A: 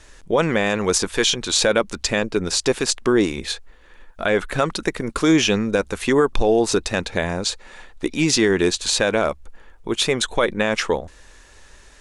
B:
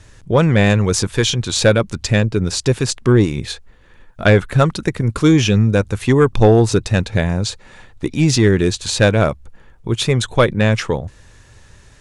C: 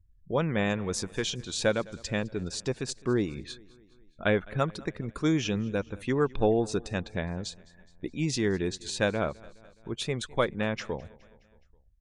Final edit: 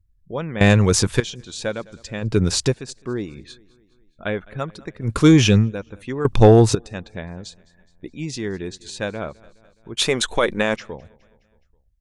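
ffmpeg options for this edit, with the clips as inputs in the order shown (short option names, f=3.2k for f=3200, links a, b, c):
-filter_complex "[1:a]asplit=4[a][b][c][d];[2:a]asplit=6[e][f][g][h][i][j];[e]atrim=end=0.612[k];[a]atrim=start=0.608:end=1.202[l];[f]atrim=start=1.198:end=2.31[m];[b]atrim=start=2.21:end=2.75[n];[g]atrim=start=2.65:end=5.16[o];[c]atrim=start=5:end=5.72[p];[h]atrim=start=5.56:end=6.252[q];[d]atrim=start=6.248:end=6.752[r];[i]atrim=start=6.748:end=9.972[s];[0:a]atrim=start=9.968:end=10.762[t];[j]atrim=start=10.758[u];[k][l]acrossfade=d=0.004:c1=hsin:c2=hsin[v];[v][m]acrossfade=d=0.004:c1=hsin:c2=hsin[w];[w][n]acrossfade=d=0.1:c1=tri:c2=tri[x];[x][o]acrossfade=d=0.1:c1=tri:c2=tri[y];[y][p]acrossfade=d=0.16:c1=tri:c2=tri[z];[z][q]acrossfade=d=0.16:c1=tri:c2=tri[aa];[aa][r]acrossfade=d=0.004:c1=hsin:c2=hsin[ab];[ab][s]acrossfade=d=0.004:c1=hsin:c2=hsin[ac];[ac][t]acrossfade=d=0.004:c1=hsin:c2=hsin[ad];[ad][u]acrossfade=d=0.004:c1=hsin:c2=hsin"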